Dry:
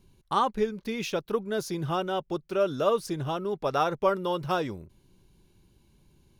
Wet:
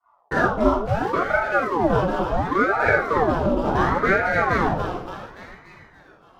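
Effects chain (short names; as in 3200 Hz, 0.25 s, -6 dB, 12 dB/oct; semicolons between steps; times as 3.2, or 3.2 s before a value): median filter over 15 samples; HPF 120 Hz 6 dB/oct; tilt -2 dB/oct; in parallel at +1 dB: compressor, threshold -31 dBFS, peak gain reduction 12.5 dB; on the sum: thinning echo 0.286 s, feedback 64%, high-pass 710 Hz, level -4 dB; expander -43 dBFS; on a send: thinning echo 0.287 s, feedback 81%, high-pass 330 Hz, level -20 dB; on the sum: shoebox room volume 870 m³, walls furnished, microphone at 3.4 m; ring modulator with a swept carrier 620 Hz, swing 75%, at 0.7 Hz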